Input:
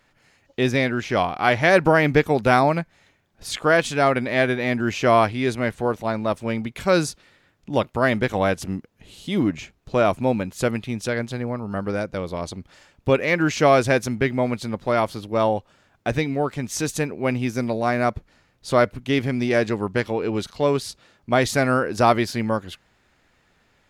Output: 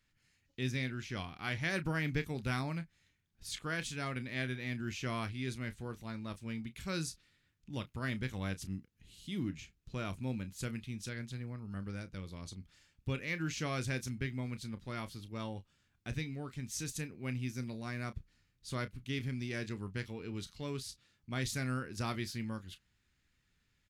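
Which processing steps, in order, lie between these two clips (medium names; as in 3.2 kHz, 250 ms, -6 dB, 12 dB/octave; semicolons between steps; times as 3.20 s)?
amplifier tone stack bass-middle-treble 6-0-2; doubling 31 ms -12.5 dB; trim +3 dB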